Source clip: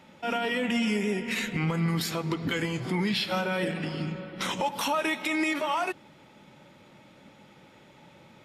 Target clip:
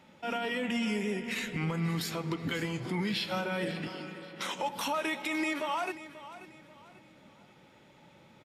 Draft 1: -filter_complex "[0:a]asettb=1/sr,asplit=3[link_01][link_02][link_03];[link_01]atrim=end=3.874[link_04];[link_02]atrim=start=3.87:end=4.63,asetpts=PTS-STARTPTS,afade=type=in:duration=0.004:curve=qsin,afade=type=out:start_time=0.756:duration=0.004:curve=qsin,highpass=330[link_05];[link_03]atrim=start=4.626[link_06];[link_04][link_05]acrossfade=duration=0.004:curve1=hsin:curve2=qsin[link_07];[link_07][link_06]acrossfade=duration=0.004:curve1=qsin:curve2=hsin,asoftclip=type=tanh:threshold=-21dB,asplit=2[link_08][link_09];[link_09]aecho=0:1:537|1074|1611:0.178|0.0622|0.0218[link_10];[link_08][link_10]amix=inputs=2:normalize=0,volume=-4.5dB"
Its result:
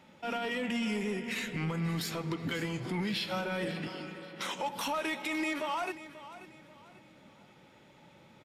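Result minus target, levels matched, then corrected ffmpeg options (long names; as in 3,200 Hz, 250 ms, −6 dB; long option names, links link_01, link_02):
soft clipping: distortion +21 dB
-filter_complex "[0:a]asettb=1/sr,asplit=3[link_01][link_02][link_03];[link_01]atrim=end=3.874[link_04];[link_02]atrim=start=3.87:end=4.63,asetpts=PTS-STARTPTS,afade=type=in:duration=0.004:curve=qsin,afade=type=out:start_time=0.756:duration=0.004:curve=qsin,highpass=330[link_05];[link_03]atrim=start=4.626[link_06];[link_04][link_05]acrossfade=duration=0.004:curve1=hsin:curve2=qsin[link_07];[link_07][link_06]acrossfade=duration=0.004:curve1=qsin:curve2=hsin,asoftclip=type=tanh:threshold=-9.5dB,asplit=2[link_08][link_09];[link_09]aecho=0:1:537|1074|1611:0.178|0.0622|0.0218[link_10];[link_08][link_10]amix=inputs=2:normalize=0,volume=-4.5dB"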